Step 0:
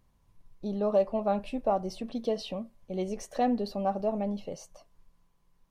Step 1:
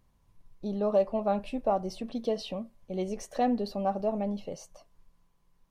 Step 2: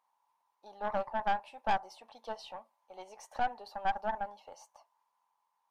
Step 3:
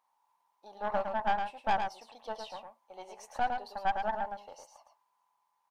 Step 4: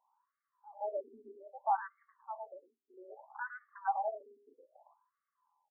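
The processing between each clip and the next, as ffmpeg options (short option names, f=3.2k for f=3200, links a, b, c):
-af anull
-af "highpass=f=880:t=q:w=8.6,aeval=exprs='(tanh(10*val(0)+0.75)-tanh(0.75))/10':c=same,volume=-4.5dB"
-af "aecho=1:1:109:0.501,volume=1dB"
-af "highpass=100,lowpass=2.2k,afftfilt=real='re*between(b*sr/1024,310*pow(1600/310,0.5+0.5*sin(2*PI*0.62*pts/sr))/1.41,310*pow(1600/310,0.5+0.5*sin(2*PI*0.62*pts/sr))*1.41)':imag='im*between(b*sr/1024,310*pow(1600/310,0.5+0.5*sin(2*PI*0.62*pts/sr))/1.41,310*pow(1600/310,0.5+0.5*sin(2*PI*0.62*pts/sr))*1.41)':win_size=1024:overlap=0.75"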